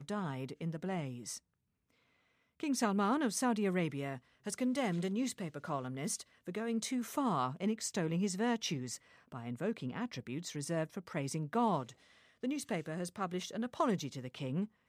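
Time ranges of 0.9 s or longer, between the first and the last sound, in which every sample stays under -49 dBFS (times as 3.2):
1.38–2.6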